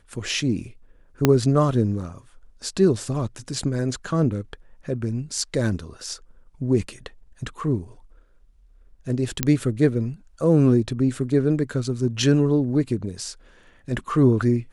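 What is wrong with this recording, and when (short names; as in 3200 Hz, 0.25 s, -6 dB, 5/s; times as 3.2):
1.25 pop -2 dBFS
9.43 pop -3 dBFS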